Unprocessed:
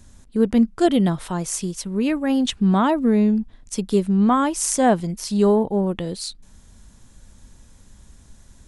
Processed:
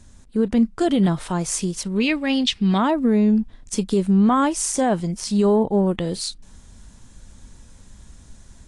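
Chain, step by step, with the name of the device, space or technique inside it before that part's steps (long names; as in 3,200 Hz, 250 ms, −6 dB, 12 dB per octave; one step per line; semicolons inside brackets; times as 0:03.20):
0:02.00–0:02.78: flat-topped bell 3,300 Hz +12 dB
low-bitrate web radio (automatic gain control gain up to 3 dB; brickwall limiter −10 dBFS, peak gain reduction 8 dB; AAC 48 kbit/s 22,050 Hz)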